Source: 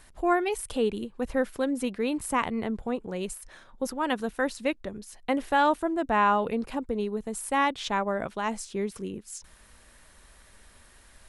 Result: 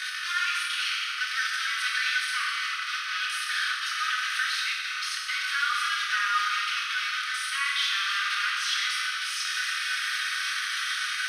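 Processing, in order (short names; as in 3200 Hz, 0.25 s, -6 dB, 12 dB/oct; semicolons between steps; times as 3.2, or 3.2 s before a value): delta modulation 64 kbps, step -25.5 dBFS; Chebyshev high-pass 1200 Hz, order 8; limiter -26.5 dBFS, peak gain reduction 8.5 dB; polynomial smoothing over 15 samples; small resonant body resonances 1500/3200 Hz, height 11 dB, ringing for 85 ms; reverb RT60 2.2 s, pre-delay 3 ms, DRR -5 dB; gain +4.5 dB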